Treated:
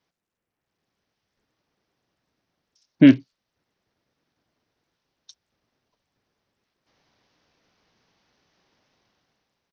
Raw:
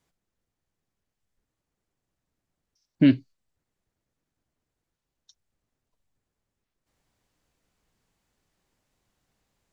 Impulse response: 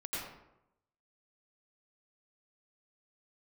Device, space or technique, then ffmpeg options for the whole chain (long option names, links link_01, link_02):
Bluetooth headset: -af "highpass=frequency=220:poles=1,dynaudnorm=framelen=150:gausssize=9:maxgain=10dB,aresample=16000,aresample=44100" -ar 48000 -c:a sbc -b:a 64k